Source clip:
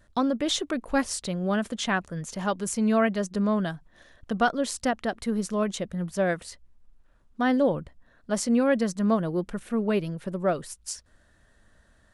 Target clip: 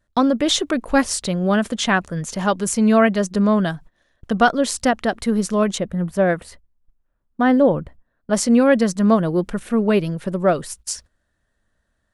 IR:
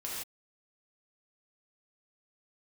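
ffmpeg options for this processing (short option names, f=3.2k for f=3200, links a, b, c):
-filter_complex "[0:a]agate=range=-18dB:threshold=-47dB:ratio=16:detection=peak,asettb=1/sr,asplit=3[a][b][c];[a]atrim=end=5.784[d];[b]atrim=start=5.78:end=8.33,asetpts=PTS-STARTPTS,afade=t=in:d=0.004:c=qsin,afade=t=out:st=2.546:d=0.004:c=qsin,equalizer=f=5.9k:t=o:w=2:g=-10.5[e];[c]atrim=start=8.326[f];[d][e]acrossfade=d=0.004:c1=hsin:c2=qsin[g];[g][f]acrossfade=d=0.004:c1=qsin:c2=hsin,volume=8dB"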